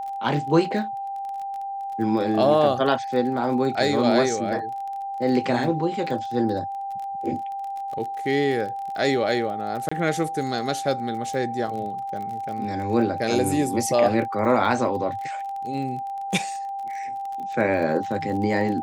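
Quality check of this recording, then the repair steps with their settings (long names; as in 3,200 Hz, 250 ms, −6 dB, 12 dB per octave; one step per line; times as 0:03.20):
surface crackle 28 per second −32 dBFS
whistle 790 Hz −28 dBFS
0:09.89–0:09.91: drop-out 25 ms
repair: click removal
notch filter 790 Hz, Q 30
repair the gap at 0:09.89, 25 ms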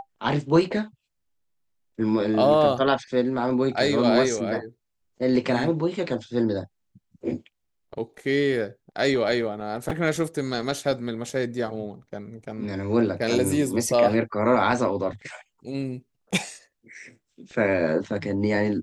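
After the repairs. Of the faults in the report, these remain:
none of them is left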